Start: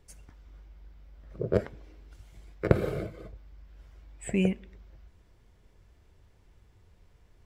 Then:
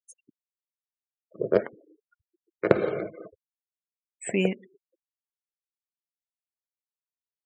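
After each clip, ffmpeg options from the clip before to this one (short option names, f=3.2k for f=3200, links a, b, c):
-af "highpass=270,afftfilt=real='re*gte(hypot(re,im),0.00501)':imag='im*gte(hypot(re,im),0.00501)':win_size=1024:overlap=0.75,volume=5.5dB"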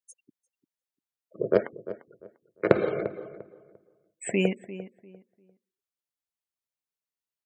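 -filter_complex "[0:a]asplit=2[a][b];[b]adelay=347,lowpass=f=1.6k:p=1,volume=-14dB,asplit=2[c][d];[d]adelay=347,lowpass=f=1.6k:p=1,volume=0.26,asplit=2[e][f];[f]adelay=347,lowpass=f=1.6k:p=1,volume=0.26[g];[a][c][e][g]amix=inputs=4:normalize=0"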